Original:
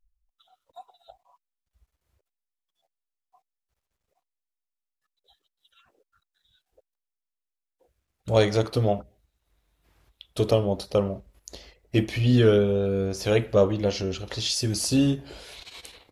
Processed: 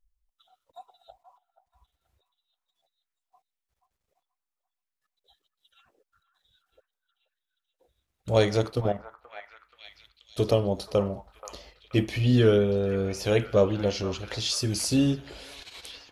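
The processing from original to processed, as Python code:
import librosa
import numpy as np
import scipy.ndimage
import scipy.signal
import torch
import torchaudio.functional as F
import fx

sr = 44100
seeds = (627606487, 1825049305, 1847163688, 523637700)

y = fx.level_steps(x, sr, step_db=11, at=(8.71, 10.38))
y = fx.echo_stepped(y, sr, ms=480, hz=1100.0, octaves=0.7, feedback_pct=70, wet_db=-7.5)
y = F.gain(torch.from_numpy(y), -1.5).numpy()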